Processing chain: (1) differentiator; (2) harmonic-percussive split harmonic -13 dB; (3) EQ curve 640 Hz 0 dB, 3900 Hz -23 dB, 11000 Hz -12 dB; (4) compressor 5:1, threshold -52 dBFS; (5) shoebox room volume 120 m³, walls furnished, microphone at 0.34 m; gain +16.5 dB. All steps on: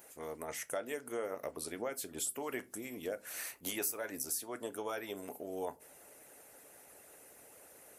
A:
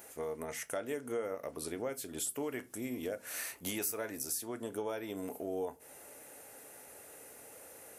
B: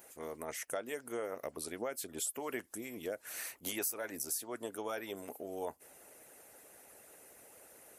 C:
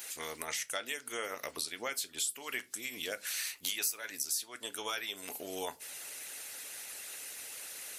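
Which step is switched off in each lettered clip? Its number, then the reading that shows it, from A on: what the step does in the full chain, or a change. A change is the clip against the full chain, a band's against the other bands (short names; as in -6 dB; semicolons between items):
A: 2, 125 Hz band +5.5 dB; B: 5, echo-to-direct -12.0 dB to none; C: 3, crest factor change +4.0 dB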